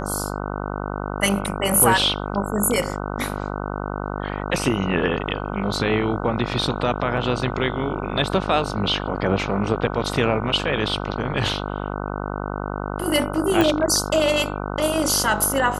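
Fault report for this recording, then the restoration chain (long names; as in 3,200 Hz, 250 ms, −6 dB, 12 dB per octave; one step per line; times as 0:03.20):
mains buzz 50 Hz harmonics 30 −28 dBFS
0:13.61: click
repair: click removal
hum removal 50 Hz, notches 30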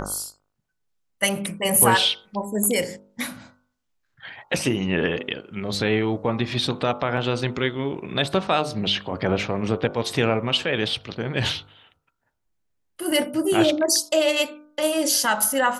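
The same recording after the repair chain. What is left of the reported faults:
none of them is left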